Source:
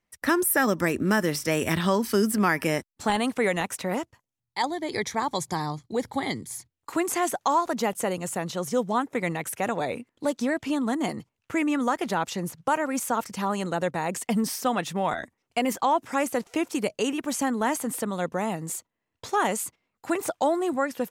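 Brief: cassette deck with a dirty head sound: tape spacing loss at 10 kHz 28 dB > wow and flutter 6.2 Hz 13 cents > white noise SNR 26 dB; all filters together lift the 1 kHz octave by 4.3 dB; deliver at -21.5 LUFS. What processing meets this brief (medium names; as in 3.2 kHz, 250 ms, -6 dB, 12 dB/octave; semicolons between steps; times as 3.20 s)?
tape spacing loss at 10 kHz 28 dB; peaking EQ 1 kHz +8.5 dB; wow and flutter 6.2 Hz 13 cents; white noise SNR 26 dB; trim +4.5 dB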